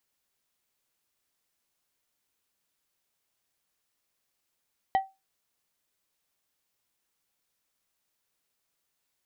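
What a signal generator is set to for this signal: glass hit plate, lowest mode 772 Hz, decay 0.23 s, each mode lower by 11 dB, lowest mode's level -17 dB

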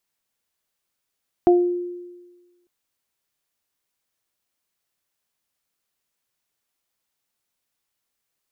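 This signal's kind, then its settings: additive tone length 1.20 s, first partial 353 Hz, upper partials -5 dB, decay 1.32 s, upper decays 0.32 s, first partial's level -10 dB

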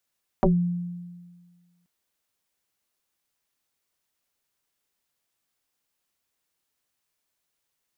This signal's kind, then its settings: FM tone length 1.43 s, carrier 175 Hz, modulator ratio 1.12, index 4.7, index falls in 0.18 s exponential, decay 1.61 s, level -14 dB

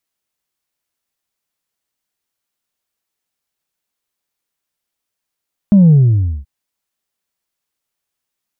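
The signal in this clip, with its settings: sub drop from 210 Hz, over 0.73 s, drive 1 dB, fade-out 0.55 s, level -4.5 dB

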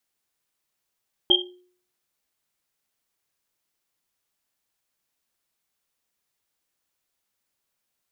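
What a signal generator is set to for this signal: Risset drum, pitch 360 Hz, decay 0.54 s, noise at 3200 Hz, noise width 130 Hz, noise 65%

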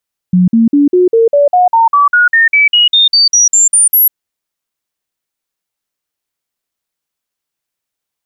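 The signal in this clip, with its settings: stepped sine 181 Hz up, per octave 3, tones 19, 0.15 s, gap 0.05 s -4.5 dBFS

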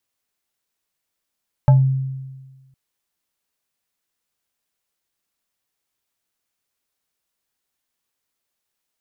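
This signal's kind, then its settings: FM tone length 1.06 s, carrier 133 Hz, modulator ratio 5.47, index 0.51, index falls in 0.24 s exponential, decay 1.39 s, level -6.5 dB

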